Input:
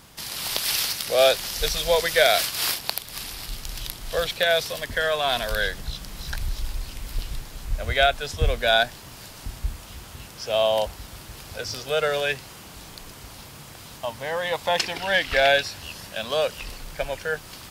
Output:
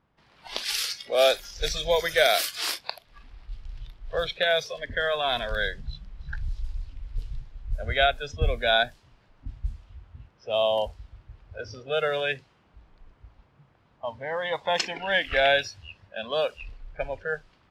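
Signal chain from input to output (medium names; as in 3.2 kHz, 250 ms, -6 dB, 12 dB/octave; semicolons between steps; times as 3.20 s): spectral noise reduction 15 dB; level-controlled noise filter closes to 1.7 kHz, open at -18.5 dBFS; trim -2.5 dB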